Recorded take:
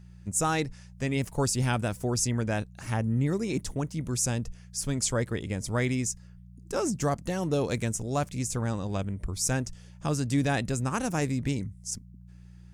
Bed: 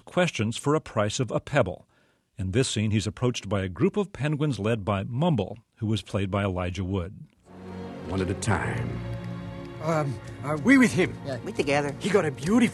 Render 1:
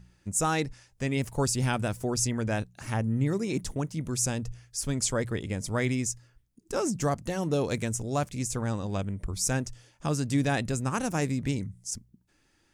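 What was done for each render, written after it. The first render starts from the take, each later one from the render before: de-hum 60 Hz, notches 3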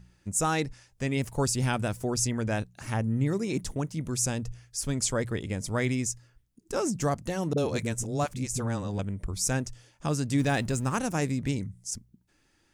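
7.53–8.99 dispersion highs, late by 45 ms, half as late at 320 Hz; 10.39–10.99 G.711 law mismatch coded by mu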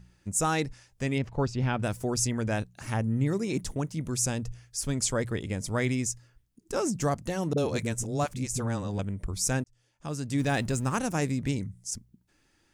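1.18–1.83 air absorption 220 m; 9.64–10.6 fade in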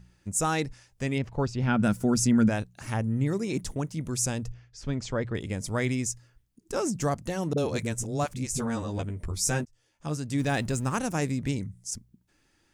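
1.67–2.48 small resonant body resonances 210/1400 Hz, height 12 dB -> 15 dB; 4.52–5.35 air absorption 180 m; 8.47–10.17 doubler 13 ms -4 dB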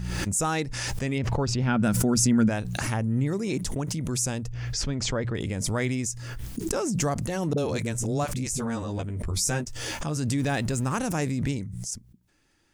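backwards sustainer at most 20 dB/s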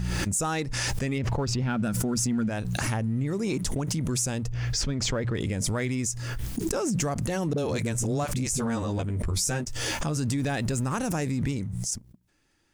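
compressor 6:1, threshold -27 dBFS, peak gain reduction 10 dB; sample leveller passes 1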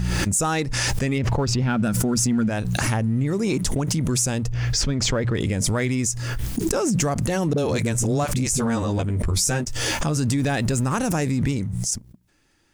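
gain +5.5 dB

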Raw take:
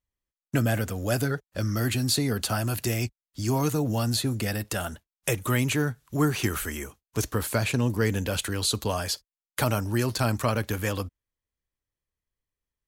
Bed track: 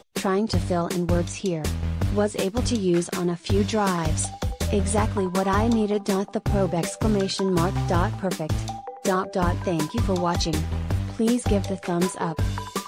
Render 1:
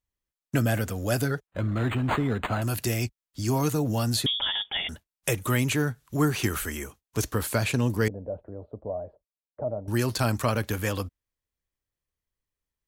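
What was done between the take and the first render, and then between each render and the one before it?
1.47–2.62 decimation joined by straight lines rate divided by 8×; 4.26–4.89 inverted band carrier 3500 Hz; 8.08–9.88 ladder low-pass 670 Hz, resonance 70%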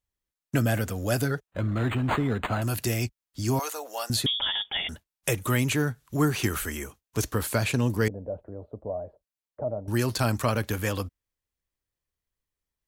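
3.59–4.1 HPF 560 Hz 24 dB/oct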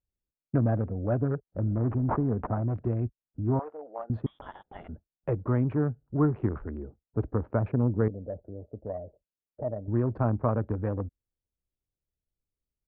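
Wiener smoothing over 41 samples; LPF 1200 Hz 24 dB/oct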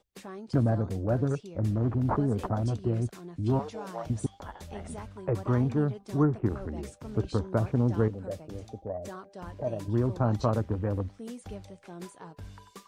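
add bed track -19.5 dB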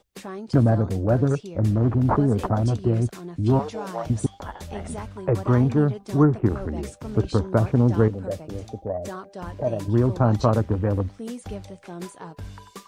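gain +7 dB

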